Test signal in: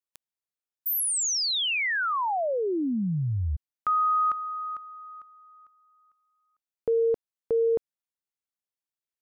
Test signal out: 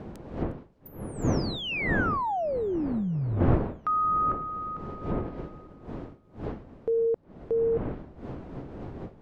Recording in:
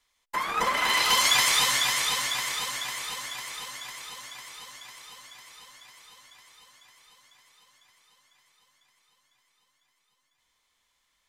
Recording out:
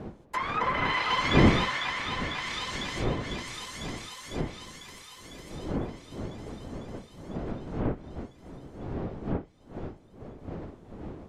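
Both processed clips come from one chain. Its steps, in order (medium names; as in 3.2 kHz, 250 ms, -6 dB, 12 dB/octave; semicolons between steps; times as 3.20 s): wind noise 350 Hz -32 dBFS; low-pass that closes with the level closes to 2.3 kHz, closed at -23.5 dBFS; feedback echo behind a high-pass 358 ms, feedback 66%, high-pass 5.4 kHz, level -18 dB; trim -1.5 dB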